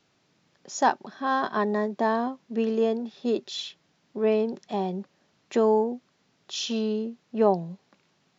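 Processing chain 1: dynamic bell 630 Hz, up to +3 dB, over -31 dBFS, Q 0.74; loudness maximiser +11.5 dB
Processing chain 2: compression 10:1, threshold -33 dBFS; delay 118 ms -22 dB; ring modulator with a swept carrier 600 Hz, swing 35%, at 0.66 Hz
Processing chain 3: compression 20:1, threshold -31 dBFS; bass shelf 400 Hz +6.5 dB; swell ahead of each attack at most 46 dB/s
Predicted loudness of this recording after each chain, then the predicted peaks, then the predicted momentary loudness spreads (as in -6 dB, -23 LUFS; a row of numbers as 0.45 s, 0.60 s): -14.5 LUFS, -41.0 LUFS, -32.5 LUFS; -1.0 dBFS, -21.0 dBFS, -13.0 dBFS; 12 LU, 9 LU, 9 LU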